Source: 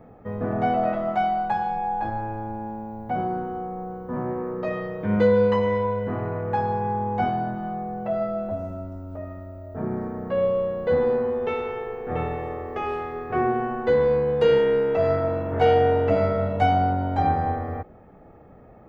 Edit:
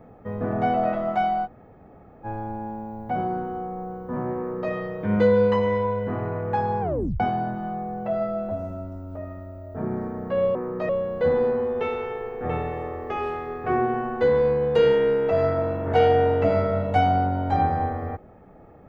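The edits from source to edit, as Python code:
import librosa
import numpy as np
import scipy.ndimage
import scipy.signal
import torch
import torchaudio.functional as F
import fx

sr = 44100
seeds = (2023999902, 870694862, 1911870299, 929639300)

y = fx.edit(x, sr, fx.room_tone_fill(start_s=1.46, length_s=0.79, crossfade_s=0.04),
    fx.duplicate(start_s=4.38, length_s=0.34, to_s=10.55),
    fx.tape_stop(start_s=6.81, length_s=0.39), tone=tone)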